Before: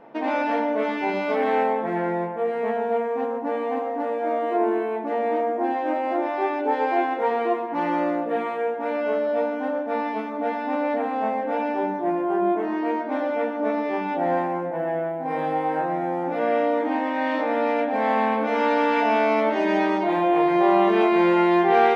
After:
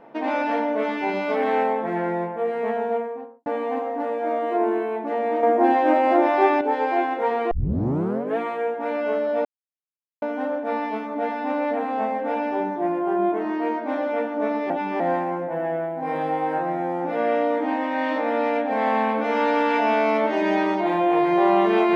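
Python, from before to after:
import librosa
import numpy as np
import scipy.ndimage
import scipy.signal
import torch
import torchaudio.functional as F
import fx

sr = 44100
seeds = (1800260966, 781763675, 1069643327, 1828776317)

y = fx.studio_fade_out(x, sr, start_s=2.82, length_s=0.64)
y = fx.edit(y, sr, fx.clip_gain(start_s=5.43, length_s=1.18, db=6.5),
    fx.tape_start(start_s=7.51, length_s=0.87),
    fx.insert_silence(at_s=9.45, length_s=0.77),
    fx.reverse_span(start_s=13.93, length_s=0.3), tone=tone)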